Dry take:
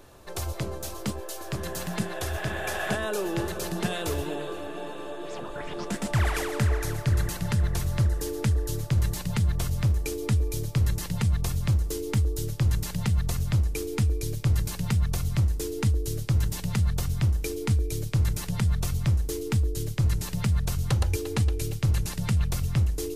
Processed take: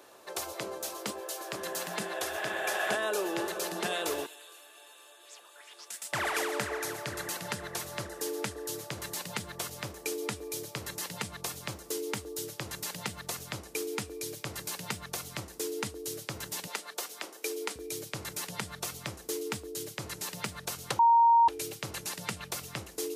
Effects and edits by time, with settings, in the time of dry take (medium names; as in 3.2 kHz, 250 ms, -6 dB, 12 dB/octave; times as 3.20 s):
4.26–6.13 s: differentiator
16.67–17.76 s: high-pass 320 Hz 24 dB/octave
20.99–21.48 s: bleep 930 Hz -17.5 dBFS
whole clip: high-pass 390 Hz 12 dB/octave